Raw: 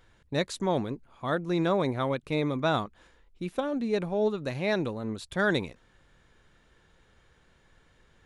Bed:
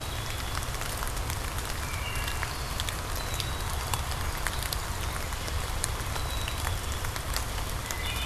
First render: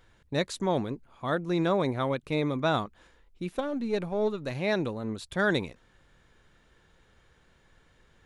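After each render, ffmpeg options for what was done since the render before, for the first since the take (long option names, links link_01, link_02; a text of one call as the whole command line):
ffmpeg -i in.wav -filter_complex "[0:a]asettb=1/sr,asplit=3[link_01][link_02][link_03];[link_01]atrim=end=3.584[link_04];[link_02]atrim=start=3.58:end=4.51,asetpts=PTS-STARTPTS,afade=type=in:duration=0.004:curve=qsin,afade=type=out:start_time=0.926:duration=0.004:curve=qsin,aeval=exprs='if(lt(val(0),0),0.708*val(0),val(0))':channel_layout=same[link_05];[link_03]atrim=start=4.506[link_06];[link_04][link_05]acrossfade=duration=0.004:curve1=hsin:curve2=qsin[link_07];[link_07][link_06]acrossfade=duration=0.004:curve1=qsin:curve2=hsin" out.wav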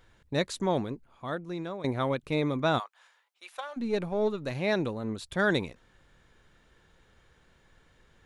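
ffmpeg -i in.wav -filter_complex "[0:a]asplit=3[link_01][link_02][link_03];[link_01]afade=type=out:start_time=2.78:duration=0.02[link_04];[link_02]highpass=frequency=750:width=0.5412,highpass=frequency=750:width=1.3066,afade=type=in:start_time=2.78:duration=0.02,afade=type=out:start_time=3.76:duration=0.02[link_05];[link_03]afade=type=in:start_time=3.76:duration=0.02[link_06];[link_04][link_05][link_06]amix=inputs=3:normalize=0,asplit=2[link_07][link_08];[link_07]atrim=end=1.84,asetpts=PTS-STARTPTS,afade=type=out:start_time=0.66:duration=1.18:silence=0.177828[link_09];[link_08]atrim=start=1.84,asetpts=PTS-STARTPTS,afade=type=in:duration=0.004:curve=hsin:silence=0.177828[link_10];[link_09][link_10]concat=n=2:v=0:a=1" out.wav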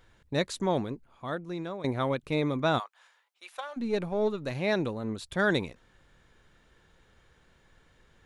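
ffmpeg -i in.wav -af anull out.wav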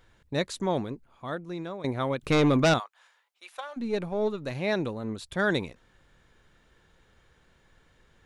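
ffmpeg -i in.wav -filter_complex "[0:a]asettb=1/sr,asplit=3[link_01][link_02][link_03];[link_01]atrim=end=2.214[link_04];[link_02]atrim=start=2.21:end=2.74,asetpts=PTS-STARTPTS,afade=type=in:duration=0.004:curve=qsin,afade=type=out:start_time=0.526:duration=0.004:curve=qsin,aeval=exprs='0.158*sin(PI/2*2*val(0)/0.158)':channel_layout=same[link_05];[link_03]atrim=start=2.736[link_06];[link_04][link_05]acrossfade=duration=0.004:curve1=hsin:curve2=qsin[link_07];[link_07][link_06]acrossfade=duration=0.004:curve1=qsin:curve2=hsin" out.wav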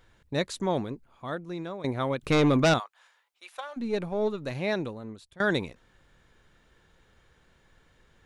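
ffmpeg -i in.wav -filter_complex "[0:a]asplit=2[link_01][link_02];[link_01]atrim=end=5.4,asetpts=PTS-STARTPTS,afade=type=out:start_time=4.61:duration=0.79:silence=0.0841395[link_03];[link_02]atrim=start=5.4,asetpts=PTS-STARTPTS,afade=type=in:duration=0.004:curve=hsin:silence=0.0841395[link_04];[link_03][link_04]concat=n=2:v=0:a=1" out.wav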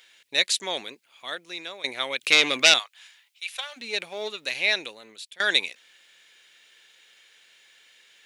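ffmpeg -i in.wav -af "highpass=550,highshelf=frequency=1700:width_type=q:width=1.5:gain=13" out.wav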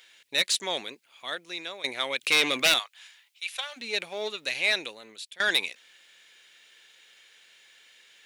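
ffmpeg -i in.wav -af "asoftclip=type=tanh:threshold=-14.5dB" out.wav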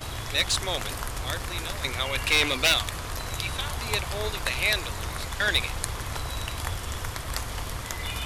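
ffmpeg -i in.wav -i bed.wav -filter_complex "[1:a]volume=-0.5dB[link_01];[0:a][link_01]amix=inputs=2:normalize=0" out.wav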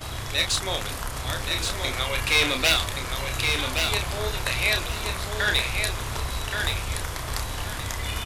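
ffmpeg -i in.wav -filter_complex "[0:a]asplit=2[link_01][link_02];[link_02]adelay=31,volume=-6dB[link_03];[link_01][link_03]amix=inputs=2:normalize=0,asplit=2[link_04][link_05];[link_05]aecho=0:1:1124|2248|3372:0.562|0.129|0.0297[link_06];[link_04][link_06]amix=inputs=2:normalize=0" out.wav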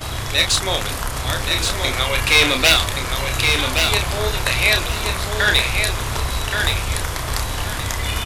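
ffmpeg -i in.wav -af "volume=7dB,alimiter=limit=-2dB:level=0:latency=1" out.wav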